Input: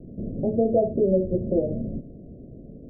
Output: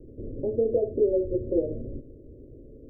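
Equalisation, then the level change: fixed phaser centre 710 Hz, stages 6; 0.0 dB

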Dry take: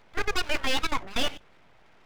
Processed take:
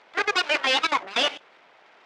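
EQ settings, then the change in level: BPF 440–5400 Hz; +7.0 dB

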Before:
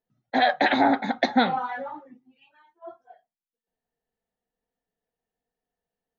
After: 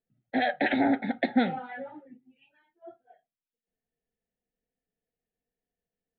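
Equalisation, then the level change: LPF 4500 Hz; air absorption 230 m; fixed phaser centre 2600 Hz, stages 4; 0.0 dB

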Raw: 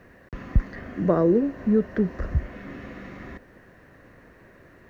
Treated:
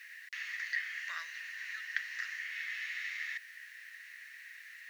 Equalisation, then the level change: elliptic high-pass 1900 Hz, stop band 80 dB; +11.0 dB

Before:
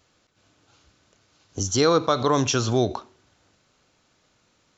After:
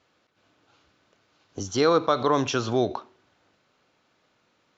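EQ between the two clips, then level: Bessel low-pass 3300 Hz, order 2; low shelf 73 Hz -11 dB; low shelf 170 Hz -5.5 dB; 0.0 dB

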